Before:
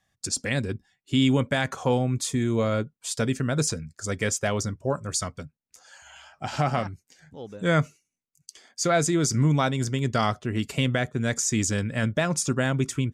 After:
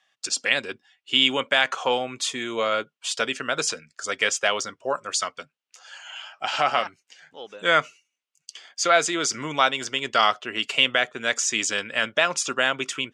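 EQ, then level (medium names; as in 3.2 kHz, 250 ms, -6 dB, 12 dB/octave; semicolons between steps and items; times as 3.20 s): band-pass 550–6700 Hz; peaking EQ 1.3 kHz +3.5 dB 0.62 oct; peaking EQ 2.9 kHz +10 dB 0.59 oct; +4.0 dB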